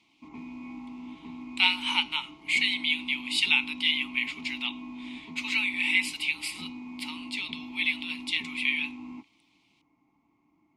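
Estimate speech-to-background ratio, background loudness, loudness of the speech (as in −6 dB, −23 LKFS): 15.5 dB, −42.5 LKFS, −27.0 LKFS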